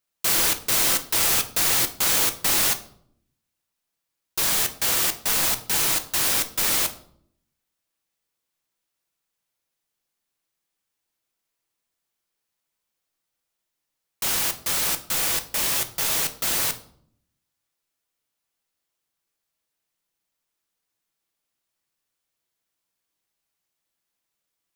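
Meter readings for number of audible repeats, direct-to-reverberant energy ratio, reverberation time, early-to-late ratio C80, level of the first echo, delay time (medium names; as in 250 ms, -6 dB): no echo, 7.5 dB, 0.65 s, 18.0 dB, no echo, no echo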